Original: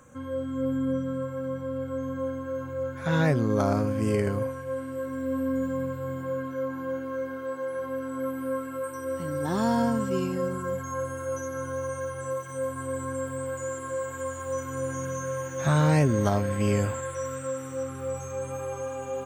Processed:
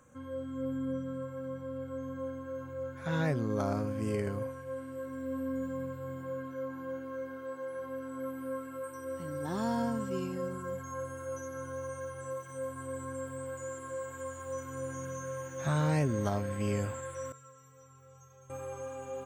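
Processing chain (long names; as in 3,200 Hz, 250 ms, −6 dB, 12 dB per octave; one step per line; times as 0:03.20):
0:17.32–0:18.50: tuned comb filter 150 Hz, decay 0.17 s, harmonics odd, mix 100%
level −7.5 dB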